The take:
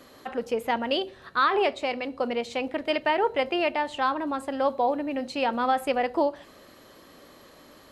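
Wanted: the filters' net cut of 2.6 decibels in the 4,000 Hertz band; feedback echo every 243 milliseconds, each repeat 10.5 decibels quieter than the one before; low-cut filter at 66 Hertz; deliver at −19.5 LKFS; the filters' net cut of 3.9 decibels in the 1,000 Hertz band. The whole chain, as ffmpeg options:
ffmpeg -i in.wav -af "highpass=66,equalizer=frequency=1000:width_type=o:gain=-5,equalizer=frequency=4000:width_type=o:gain=-3.5,aecho=1:1:243|486|729:0.299|0.0896|0.0269,volume=9dB" out.wav

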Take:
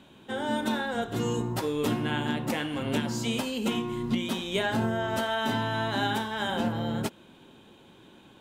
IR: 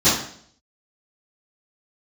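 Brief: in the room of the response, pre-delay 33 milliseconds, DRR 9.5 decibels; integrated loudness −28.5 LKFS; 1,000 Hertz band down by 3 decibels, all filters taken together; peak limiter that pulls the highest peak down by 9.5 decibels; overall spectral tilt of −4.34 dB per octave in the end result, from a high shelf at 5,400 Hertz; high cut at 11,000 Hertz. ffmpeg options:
-filter_complex "[0:a]lowpass=11000,equalizer=frequency=1000:width_type=o:gain=-4,highshelf=frequency=5400:gain=3.5,alimiter=level_in=2dB:limit=-24dB:level=0:latency=1,volume=-2dB,asplit=2[link_01][link_02];[1:a]atrim=start_sample=2205,adelay=33[link_03];[link_02][link_03]afir=irnorm=-1:irlink=0,volume=-30dB[link_04];[link_01][link_04]amix=inputs=2:normalize=0,volume=5dB"

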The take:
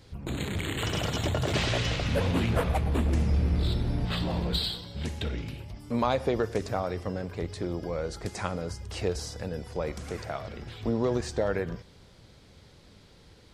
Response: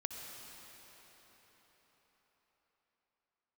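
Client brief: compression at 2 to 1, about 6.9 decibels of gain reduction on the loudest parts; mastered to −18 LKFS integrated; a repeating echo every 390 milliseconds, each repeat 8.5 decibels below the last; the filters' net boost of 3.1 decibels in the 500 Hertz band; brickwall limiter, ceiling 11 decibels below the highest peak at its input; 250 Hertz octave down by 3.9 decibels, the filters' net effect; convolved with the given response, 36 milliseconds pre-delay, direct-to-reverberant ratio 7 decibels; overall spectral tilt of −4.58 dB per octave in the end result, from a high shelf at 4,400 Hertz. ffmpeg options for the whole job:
-filter_complex "[0:a]equalizer=frequency=250:width_type=o:gain=-7.5,equalizer=frequency=500:width_type=o:gain=5.5,highshelf=frequency=4400:gain=5.5,acompressor=threshold=-33dB:ratio=2,alimiter=level_in=4.5dB:limit=-24dB:level=0:latency=1,volume=-4.5dB,aecho=1:1:390|780|1170|1560:0.376|0.143|0.0543|0.0206,asplit=2[link_01][link_02];[1:a]atrim=start_sample=2205,adelay=36[link_03];[link_02][link_03]afir=irnorm=-1:irlink=0,volume=-7dB[link_04];[link_01][link_04]amix=inputs=2:normalize=0,volume=19dB"

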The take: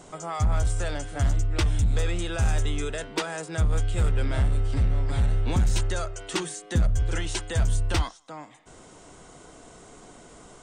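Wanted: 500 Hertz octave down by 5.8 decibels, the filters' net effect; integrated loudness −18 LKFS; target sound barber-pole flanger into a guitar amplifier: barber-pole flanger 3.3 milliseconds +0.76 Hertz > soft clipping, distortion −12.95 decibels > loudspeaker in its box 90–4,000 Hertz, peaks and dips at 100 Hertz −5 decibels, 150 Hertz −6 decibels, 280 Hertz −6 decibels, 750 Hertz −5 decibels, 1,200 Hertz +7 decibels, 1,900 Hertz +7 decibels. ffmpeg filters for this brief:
ffmpeg -i in.wav -filter_complex "[0:a]equalizer=frequency=500:width_type=o:gain=-6,asplit=2[link_01][link_02];[link_02]adelay=3.3,afreqshift=0.76[link_03];[link_01][link_03]amix=inputs=2:normalize=1,asoftclip=threshold=-23.5dB,highpass=90,equalizer=frequency=100:width_type=q:width=4:gain=-5,equalizer=frequency=150:width_type=q:width=4:gain=-6,equalizer=frequency=280:width_type=q:width=4:gain=-6,equalizer=frequency=750:width_type=q:width=4:gain=-5,equalizer=frequency=1200:width_type=q:width=4:gain=7,equalizer=frequency=1900:width_type=q:width=4:gain=7,lowpass=frequency=4000:width=0.5412,lowpass=frequency=4000:width=1.3066,volume=20dB" out.wav

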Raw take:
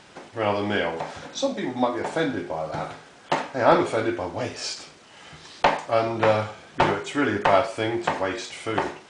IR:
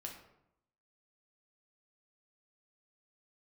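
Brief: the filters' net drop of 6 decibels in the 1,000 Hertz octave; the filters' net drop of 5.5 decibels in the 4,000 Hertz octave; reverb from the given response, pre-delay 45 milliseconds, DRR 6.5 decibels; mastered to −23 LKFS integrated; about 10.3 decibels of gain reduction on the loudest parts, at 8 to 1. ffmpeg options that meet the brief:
-filter_complex "[0:a]equalizer=frequency=1000:width_type=o:gain=-8,equalizer=frequency=4000:width_type=o:gain=-7,acompressor=threshold=-27dB:ratio=8,asplit=2[link_01][link_02];[1:a]atrim=start_sample=2205,adelay=45[link_03];[link_02][link_03]afir=irnorm=-1:irlink=0,volume=-3.5dB[link_04];[link_01][link_04]amix=inputs=2:normalize=0,volume=9.5dB"

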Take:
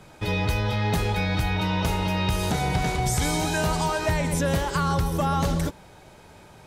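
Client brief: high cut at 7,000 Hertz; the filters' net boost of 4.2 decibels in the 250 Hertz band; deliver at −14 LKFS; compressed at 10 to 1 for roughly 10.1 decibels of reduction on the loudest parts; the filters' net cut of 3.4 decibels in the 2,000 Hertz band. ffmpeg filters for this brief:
ffmpeg -i in.wav -af "lowpass=7000,equalizer=frequency=250:width_type=o:gain=7,equalizer=frequency=2000:width_type=o:gain=-4.5,acompressor=threshold=-28dB:ratio=10,volume=18.5dB" out.wav

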